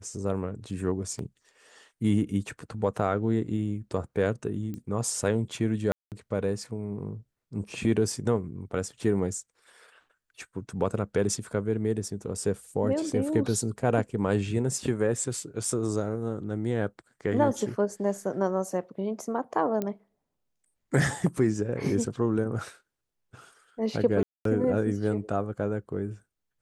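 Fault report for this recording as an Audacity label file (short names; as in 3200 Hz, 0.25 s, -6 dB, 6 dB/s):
1.190000	1.190000	gap 2.1 ms
4.740000	4.740000	pop -25 dBFS
5.920000	6.120000	gap 0.198 s
19.820000	19.820000	pop -17 dBFS
24.230000	24.450000	gap 0.223 s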